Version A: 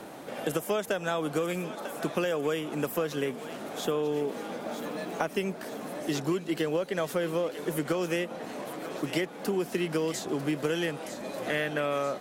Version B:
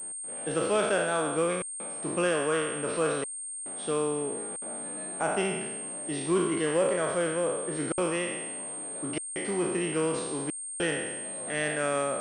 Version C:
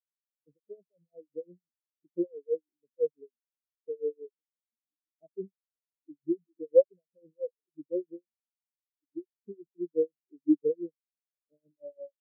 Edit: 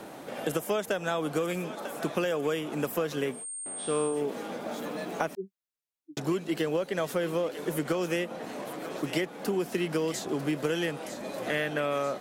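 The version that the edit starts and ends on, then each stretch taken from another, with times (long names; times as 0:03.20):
A
0:03.38–0:04.14: punch in from B, crossfade 0.16 s
0:05.35–0:06.17: punch in from C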